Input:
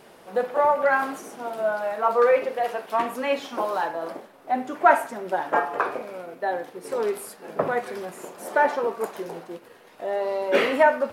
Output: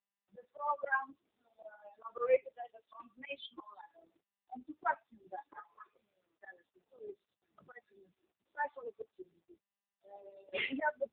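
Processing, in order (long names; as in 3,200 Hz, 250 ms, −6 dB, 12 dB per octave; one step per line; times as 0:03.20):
spectral dynamics exaggerated over time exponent 3
spectral tilt +3 dB per octave
volume swells 202 ms
AMR narrowband 6.7 kbit/s 8,000 Hz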